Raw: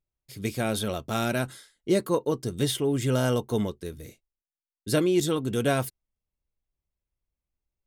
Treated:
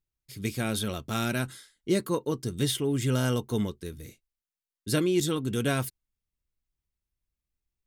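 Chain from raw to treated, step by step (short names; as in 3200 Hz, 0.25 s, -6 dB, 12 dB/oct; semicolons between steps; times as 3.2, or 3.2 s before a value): bell 640 Hz -7 dB 1.2 oct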